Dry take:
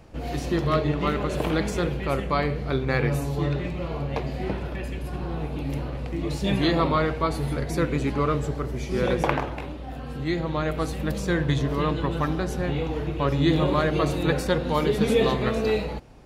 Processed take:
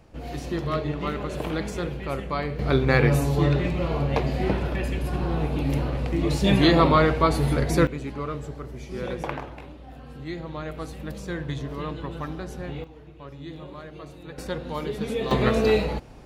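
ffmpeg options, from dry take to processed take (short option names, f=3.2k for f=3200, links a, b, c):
-af "asetnsamples=n=441:p=0,asendcmd='2.59 volume volume 4.5dB;7.87 volume volume -7.5dB;12.84 volume volume -18dB;14.38 volume volume -7.5dB;15.31 volume volume 3.5dB',volume=-4dB"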